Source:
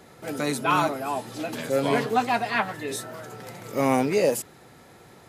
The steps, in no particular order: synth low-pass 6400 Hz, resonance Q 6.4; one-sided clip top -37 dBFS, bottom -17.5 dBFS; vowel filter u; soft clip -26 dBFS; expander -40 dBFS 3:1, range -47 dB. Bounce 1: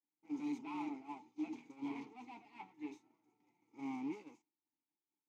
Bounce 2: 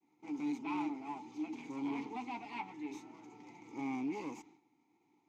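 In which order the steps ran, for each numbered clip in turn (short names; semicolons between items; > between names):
synth low-pass > soft clip > one-sided clip > vowel filter > expander; synth low-pass > one-sided clip > expander > vowel filter > soft clip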